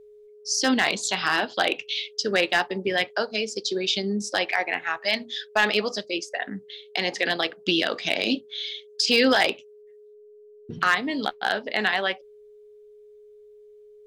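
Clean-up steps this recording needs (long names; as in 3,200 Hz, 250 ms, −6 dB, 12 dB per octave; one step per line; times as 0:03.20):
clipped peaks rebuilt −11 dBFS
notch filter 420 Hz, Q 30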